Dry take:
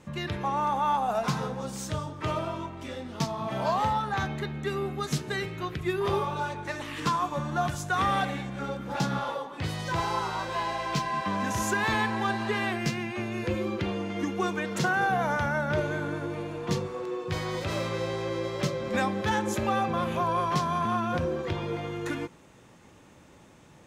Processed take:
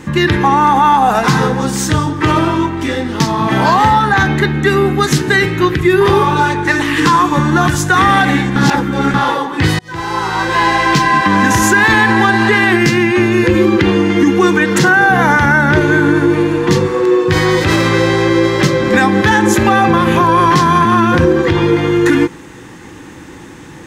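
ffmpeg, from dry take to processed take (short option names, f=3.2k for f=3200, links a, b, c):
-filter_complex "[0:a]asplit=4[a][b][c][d];[a]atrim=end=8.562[e];[b]atrim=start=8.558:end=9.142,asetpts=PTS-STARTPTS,areverse[f];[c]atrim=start=9.138:end=9.79,asetpts=PTS-STARTPTS,afade=t=out:st=0.648:d=0.004:c=hsin[g];[d]atrim=start=9.79,asetpts=PTS-STARTPTS,afade=t=in:d=0.91[h];[e][f]acrossfade=d=0.004:c1=hsin:c2=hsin[i];[g][h]concat=n=2:v=0:a=1[j];[i][j]acrossfade=d=0.004:c1=hsin:c2=hsin,superequalizer=6b=2:8b=0.398:11b=1.78,alimiter=level_in=20dB:limit=-1dB:release=50:level=0:latency=1,volume=-1dB"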